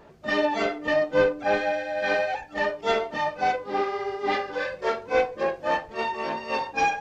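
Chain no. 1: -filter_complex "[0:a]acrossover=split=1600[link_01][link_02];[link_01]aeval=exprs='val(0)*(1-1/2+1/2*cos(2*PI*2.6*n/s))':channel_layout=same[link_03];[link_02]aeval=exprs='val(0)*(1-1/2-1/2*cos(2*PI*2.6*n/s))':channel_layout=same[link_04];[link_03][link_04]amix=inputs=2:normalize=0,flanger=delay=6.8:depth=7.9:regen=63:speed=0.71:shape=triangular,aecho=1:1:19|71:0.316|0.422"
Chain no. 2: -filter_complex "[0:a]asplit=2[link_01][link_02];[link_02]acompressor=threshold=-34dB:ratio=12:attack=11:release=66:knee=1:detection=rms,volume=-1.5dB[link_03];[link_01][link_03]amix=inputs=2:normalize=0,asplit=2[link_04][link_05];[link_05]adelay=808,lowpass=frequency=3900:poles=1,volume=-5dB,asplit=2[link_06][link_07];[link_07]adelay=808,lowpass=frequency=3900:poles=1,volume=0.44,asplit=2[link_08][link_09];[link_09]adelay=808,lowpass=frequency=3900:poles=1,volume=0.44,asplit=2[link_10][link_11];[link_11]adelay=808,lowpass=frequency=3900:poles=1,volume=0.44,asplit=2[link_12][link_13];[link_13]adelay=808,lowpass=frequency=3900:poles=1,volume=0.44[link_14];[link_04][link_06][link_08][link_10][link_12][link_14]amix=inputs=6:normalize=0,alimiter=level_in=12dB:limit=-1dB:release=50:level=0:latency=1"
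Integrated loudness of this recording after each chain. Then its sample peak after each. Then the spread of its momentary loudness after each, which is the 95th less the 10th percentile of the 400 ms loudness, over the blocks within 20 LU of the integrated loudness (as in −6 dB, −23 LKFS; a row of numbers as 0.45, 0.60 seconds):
−34.0, −12.0 LKFS; −16.0, −1.0 dBFS; 6, 3 LU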